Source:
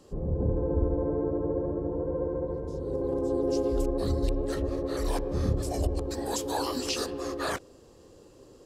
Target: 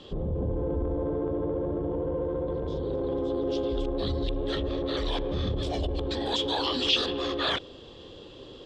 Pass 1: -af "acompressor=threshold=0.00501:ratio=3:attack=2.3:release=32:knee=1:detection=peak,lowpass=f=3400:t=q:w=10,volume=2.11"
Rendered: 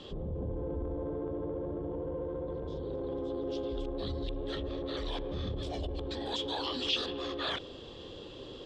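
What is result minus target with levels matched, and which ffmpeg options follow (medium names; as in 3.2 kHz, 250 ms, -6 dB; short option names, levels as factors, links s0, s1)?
compression: peak gain reduction +7 dB
-af "acompressor=threshold=0.0168:ratio=3:attack=2.3:release=32:knee=1:detection=peak,lowpass=f=3400:t=q:w=10,volume=2.11"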